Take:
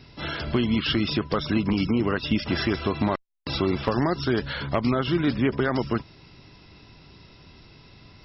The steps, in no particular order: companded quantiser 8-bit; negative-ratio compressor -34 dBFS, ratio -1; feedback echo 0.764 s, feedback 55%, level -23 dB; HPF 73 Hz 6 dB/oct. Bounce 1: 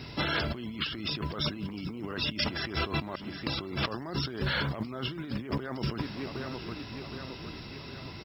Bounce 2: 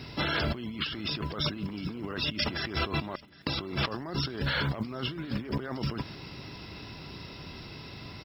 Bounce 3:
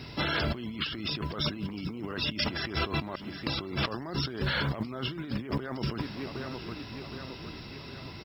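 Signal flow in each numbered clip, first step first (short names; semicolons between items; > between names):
feedback echo > negative-ratio compressor > companded quantiser > HPF; companded quantiser > HPF > negative-ratio compressor > feedback echo; feedback echo > companded quantiser > HPF > negative-ratio compressor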